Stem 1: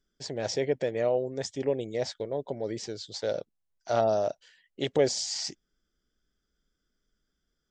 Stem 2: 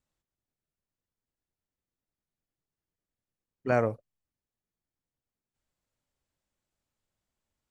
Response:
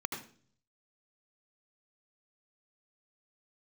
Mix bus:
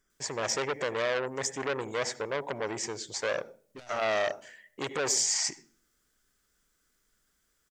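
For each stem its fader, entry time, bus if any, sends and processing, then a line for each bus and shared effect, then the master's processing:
-3.0 dB, 0.00 s, send -15.5 dB, ten-band EQ 500 Hz +3 dB, 1000 Hz +8 dB, 2000 Hz +9 dB, 4000 Hz -11 dB, 8000 Hz +6 dB; limiter -15.5 dBFS, peak gain reduction 9 dB
-3.0 dB, 0.10 s, no send, compressor 4:1, threshold -32 dBFS, peak gain reduction 10.5 dB; soft clip -37 dBFS, distortion -7 dB; high shelf 2300 Hz +9.5 dB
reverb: on, RT60 0.45 s, pre-delay 72 ms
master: high shelf 2400 Hz +9.5 dB; core saturation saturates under 2200 Hz

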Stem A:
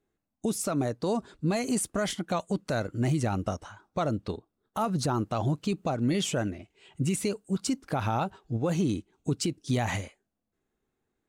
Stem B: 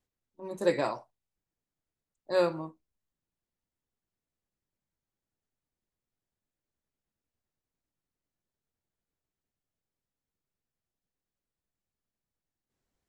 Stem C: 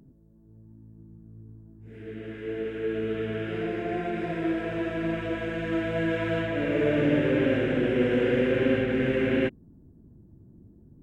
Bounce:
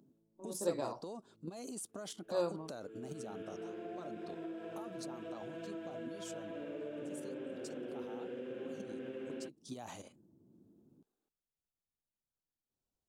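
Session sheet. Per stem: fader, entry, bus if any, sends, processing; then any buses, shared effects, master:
-2.5 dB, 0.00 s, bus A, no send, level quantiser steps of 12 dB
-8.0 dB, 0.00 s, no bus, no send, dry
-6.5 dB, 0.00 s, bus A, no send, auto duck -18 dB, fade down 0.85 s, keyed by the second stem
bus A: 0.0 dB, HPF 240 Hz 12 dB/oct; compressor, threshold -41 dBFS, peak gain reduction 13.5 dB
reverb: off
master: bell 2000 Hz -13 dB 0.68 oct

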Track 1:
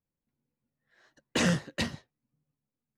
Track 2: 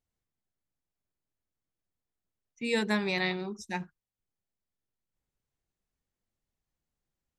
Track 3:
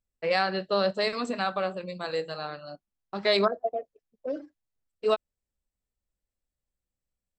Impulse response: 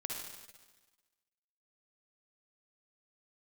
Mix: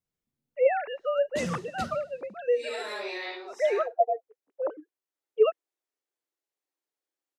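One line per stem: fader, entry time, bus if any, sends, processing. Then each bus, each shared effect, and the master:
-4.0 dB, 0.00 s, bus A, send -14 dB, bell 1700 Hz -9 dB 2.4 oct
-2.0 dB, 0.00 s, bus A, no send, phase scrambler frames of 0.2 s; steep high-pass 280 Hz 72 dB/oct
+0.5 dB, 0.35 s, no bus, no send, sine-wave speech
bus A: 0.0 dB, limiter -26.5 dBFS, peak gain reduction 5 dB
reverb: on, RT60 1.3 s, pre-delay 49 ms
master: dry

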